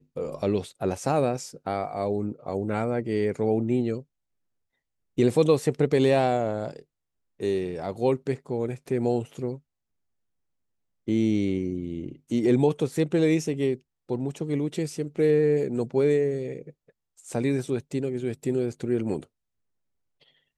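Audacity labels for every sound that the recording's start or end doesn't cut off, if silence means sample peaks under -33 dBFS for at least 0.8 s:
5.180000	9.550000	sound
11.080000	19.230000	sound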